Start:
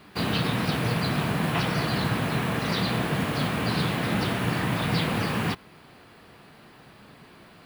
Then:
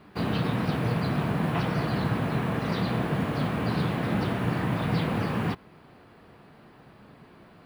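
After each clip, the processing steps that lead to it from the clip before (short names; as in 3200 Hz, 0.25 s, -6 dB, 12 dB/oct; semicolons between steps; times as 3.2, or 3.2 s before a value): high shelf 2100 Hz -11.5 dB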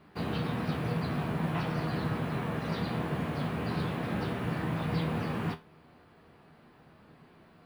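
resonator 80 Hz, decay 0.24 s, harmonics all, mix 70%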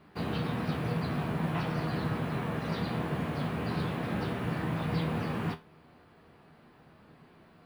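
nothing audible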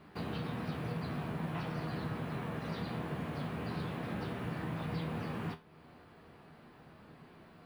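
compressor 1.5:1, threshold -49 dBFS, peak gain reduction 8.5 dB; gain +1 dB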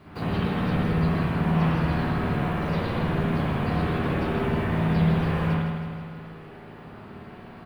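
octaver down 1 oct, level -5 dB; feedback echo 0.16 s, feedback 60%, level -7 dB; reverb, pre-delay 55 ms, DRR -5.5 dB; gain +5 dB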